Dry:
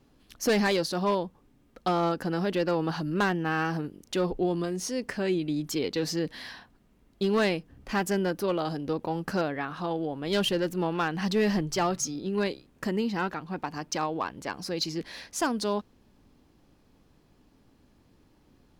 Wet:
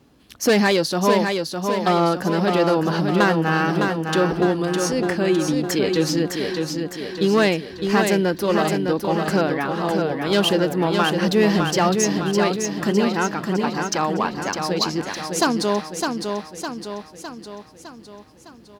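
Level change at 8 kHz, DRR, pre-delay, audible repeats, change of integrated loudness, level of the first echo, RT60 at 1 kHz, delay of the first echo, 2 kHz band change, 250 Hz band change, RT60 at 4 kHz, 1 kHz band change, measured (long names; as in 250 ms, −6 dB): +9.0 dB, no reverb audible, no reverb audible, 6, +8.5 dB, −5.0 dB, no reverb audible, 608 ms, +9.0 dB, +9.0 dB, no reverb audible, +9.0 dB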